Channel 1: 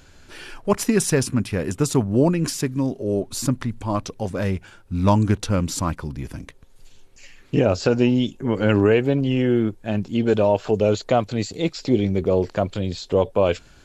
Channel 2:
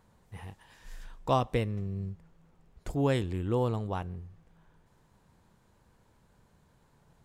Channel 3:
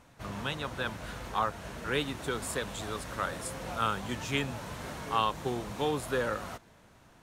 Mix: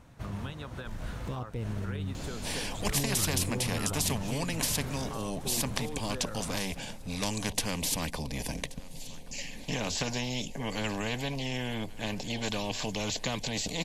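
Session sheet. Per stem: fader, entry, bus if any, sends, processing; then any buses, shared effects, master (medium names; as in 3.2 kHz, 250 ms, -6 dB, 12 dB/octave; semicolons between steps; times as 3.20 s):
-2.0 dB, 2.15 s, no bus, no send, echo send -20.5 dB, static phaser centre 360 Hz, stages 6; spectrum-flattening compressor 4:1
+0.5 dB, 0.00 s, bus A, no send, no echo send, compression 1.5:1, threshold -44 dBFS, peak gain reduction 8.5 dB; crossover distortion -48.5 dBFS; step-sequenced notch 11 Hz 440–3000 Hz
-1.5 dB, 0.00 s, bus A, no send, no echo send, compression 10:1, threshold -38 dBFS, peak gain reduction 15.5 dB
bus A: 0.0 dB, peak limiter -31 dBFS, peak gain reduction 7.5 dB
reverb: none
echo: feedback delay 1129 ms, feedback 33%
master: bass shelf 260 Hz +10 dB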